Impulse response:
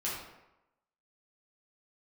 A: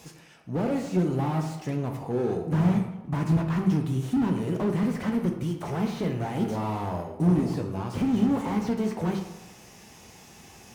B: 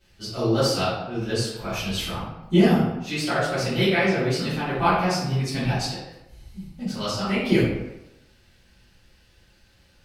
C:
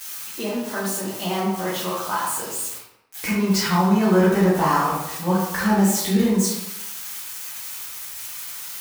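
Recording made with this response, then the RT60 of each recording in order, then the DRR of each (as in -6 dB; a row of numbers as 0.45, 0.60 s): C; 0.95, 0.95, 0.95 s; 2.5, -15.0, -7.5 dB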